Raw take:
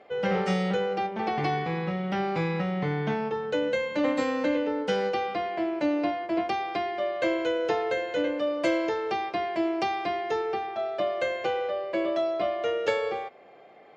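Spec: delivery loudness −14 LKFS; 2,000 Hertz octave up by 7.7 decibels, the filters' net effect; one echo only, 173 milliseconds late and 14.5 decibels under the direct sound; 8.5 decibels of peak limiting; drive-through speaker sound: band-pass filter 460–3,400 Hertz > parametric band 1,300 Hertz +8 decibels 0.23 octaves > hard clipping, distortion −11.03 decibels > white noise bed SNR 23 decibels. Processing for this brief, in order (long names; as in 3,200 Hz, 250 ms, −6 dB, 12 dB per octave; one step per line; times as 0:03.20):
parametric band 2,000 Hz +9 dB
brickwall limiter −19 dBFS
band-pass filter 460–3,400 Hz
parametric band 1,300 Hz +8 dB 0.23 octaves
single-tap delay 173 ms −14.5 dB
hard clipping −28 dBFS
white noise bed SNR 23 dB
level +16.5 dB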